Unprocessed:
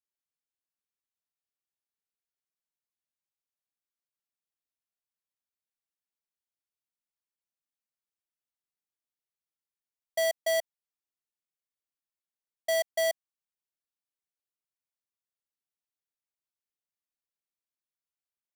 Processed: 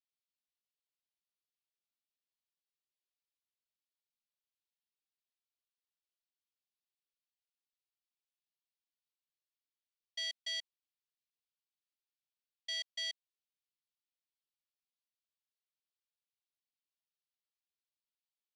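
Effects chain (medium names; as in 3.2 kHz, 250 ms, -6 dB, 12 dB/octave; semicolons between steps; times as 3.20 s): Butterworth band-pass 3.6 kHz, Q 1.4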